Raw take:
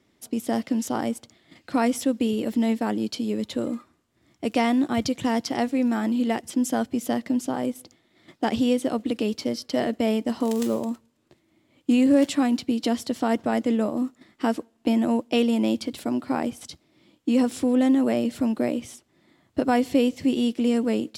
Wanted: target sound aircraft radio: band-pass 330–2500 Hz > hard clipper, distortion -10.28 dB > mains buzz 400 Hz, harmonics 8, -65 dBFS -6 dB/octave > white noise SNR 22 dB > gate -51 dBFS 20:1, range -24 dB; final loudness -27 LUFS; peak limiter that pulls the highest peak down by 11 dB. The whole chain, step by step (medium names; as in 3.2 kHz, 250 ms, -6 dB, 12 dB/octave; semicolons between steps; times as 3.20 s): peak limiter -20 dBFS; band-pass 330–2500 Hz; hard clipper -31 dBFS; mains buzz 400 Hz, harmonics 8, -65 dBFS -6 dB/octave; white noise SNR 22 dB; gate -51 dBFS 20:1, range -24 dB; trim +10 dB